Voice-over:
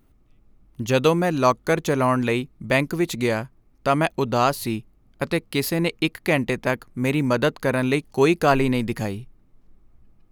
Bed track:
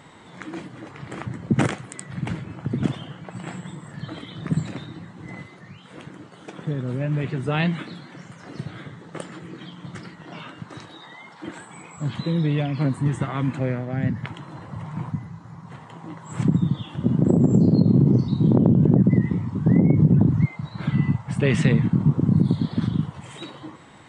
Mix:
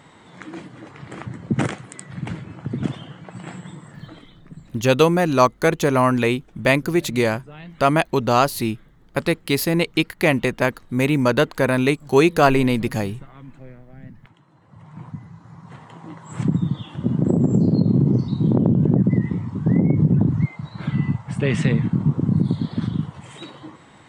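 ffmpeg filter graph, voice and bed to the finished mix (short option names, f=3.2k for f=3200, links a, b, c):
-filter_complex "[0:a]adelay=3950,volume=3dB[a];[1:a]volume=16dB,afade=t=out:st=3.77:d=0.67:silence=0.149624,afade=t=in:st=14.61:d=1.11:silence=0.141254[b];[a][b]amix=inputs=2:normalize=0"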